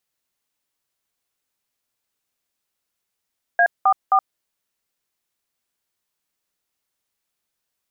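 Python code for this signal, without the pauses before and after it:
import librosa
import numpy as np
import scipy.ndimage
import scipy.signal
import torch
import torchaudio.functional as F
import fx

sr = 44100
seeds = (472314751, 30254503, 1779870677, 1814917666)

y = fx.dtmf(sr, digits='A44', tone_ms=72, gap_ms=192, level_db=-14.5)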